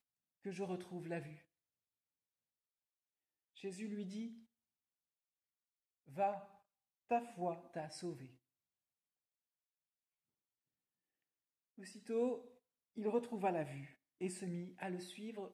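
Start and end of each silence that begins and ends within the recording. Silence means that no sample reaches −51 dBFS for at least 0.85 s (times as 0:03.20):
0:01.36–0:03.57
0:04.34–0:06.10
0:08.26–0:11.78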